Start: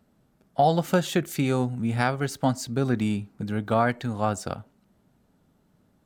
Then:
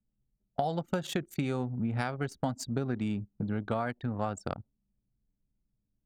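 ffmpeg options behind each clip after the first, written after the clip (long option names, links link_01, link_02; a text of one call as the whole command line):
ffmpeg -i in.wav -af "anlmdn=10,acompressor=threshold=-28dB:ratio=6" out.wav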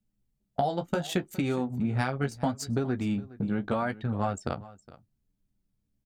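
ffmpeg -i in.wav -af "flanger=delay=9.9:depth=5.5:regen=-32:speed=0.73:shape=sinusoidal,aecho=1:1:414:0.112,volume=7dB" out.wav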